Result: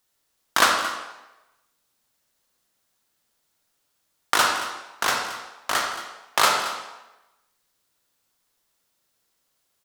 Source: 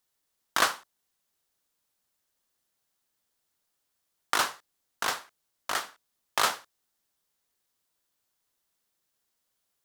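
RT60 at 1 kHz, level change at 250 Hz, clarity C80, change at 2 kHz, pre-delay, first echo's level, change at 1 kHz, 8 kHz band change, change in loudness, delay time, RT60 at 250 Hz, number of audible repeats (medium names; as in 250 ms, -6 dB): 1.0 s, +8.0 dB, 5.5 dB, +7.5 dB, 32 ms, -14.0 dB, +8.0 dB, +6.5 dB, +6.0 dB, 224 ms, 0.95 s, 1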